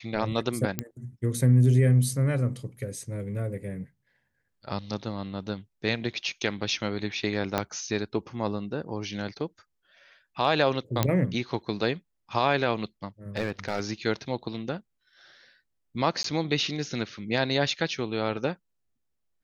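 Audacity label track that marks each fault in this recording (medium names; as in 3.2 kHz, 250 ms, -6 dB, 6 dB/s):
0.790000	0.790000	pop -12 dBFS
7.580000	7.580000	pop -10 dBFS
11.030000	11.030000	pop -8 dBFS
13.360000	13.800000	clipped -21.5 dBFS
16.230000	16.240000	dropout 13 ms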